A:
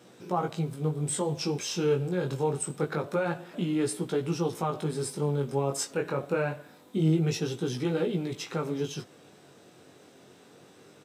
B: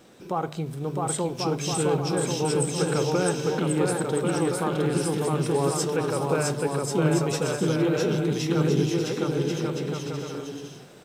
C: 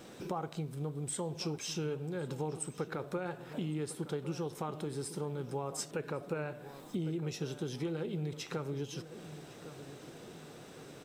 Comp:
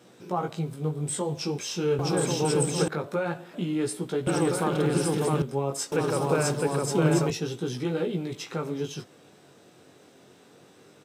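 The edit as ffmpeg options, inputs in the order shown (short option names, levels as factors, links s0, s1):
-filter_complex "[1:a]asplit=3[s0][s1][s2];[0:a]asplit=4[s3][s4][s5][s6];[s3]atrim=end=1.992[s7];[s0]atrim=start=1.988:end=2.882[s8];[s4]atrim=start=2.878:end=4.272[s9];[s1]atrim=start=4.268:end=5.422[s10];[s5]atrim=start=5.418:end=5.922[s11];[s2]atrim=start=5.918:end=7.302[s12];[s6]atrim=start=7.298[s13];[s7][s8]acrossfade=d=0.004:c1=hsin:c2=hsin[s14];[s14][s9]acrossfade=d=0.004:c1=hsin:c2=hsin[s15];[s15][s10]acrossfade=d=0.004:c1=hsin:c2=hsin[s16];[s16][s11]acrossfade=d=0.004:c1=hsin:c2=hsin[s17];[s17][s12]acrossfade=d=0.004:c1=hsin:c2=hsin[s18];[s18][s13]acrossfade=d=0.004:c1=hsin:c2=hsin"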